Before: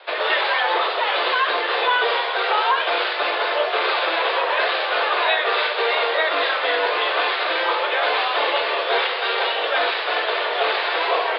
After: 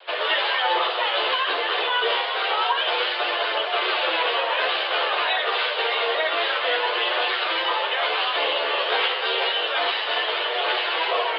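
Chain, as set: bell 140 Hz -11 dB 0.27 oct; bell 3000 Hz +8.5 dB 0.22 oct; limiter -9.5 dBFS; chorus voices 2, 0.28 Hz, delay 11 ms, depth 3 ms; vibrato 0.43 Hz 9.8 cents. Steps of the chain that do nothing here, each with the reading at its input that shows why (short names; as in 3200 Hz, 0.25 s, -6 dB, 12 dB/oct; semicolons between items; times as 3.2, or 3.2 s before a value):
bell 140 Hz: input band starts at 290 Hz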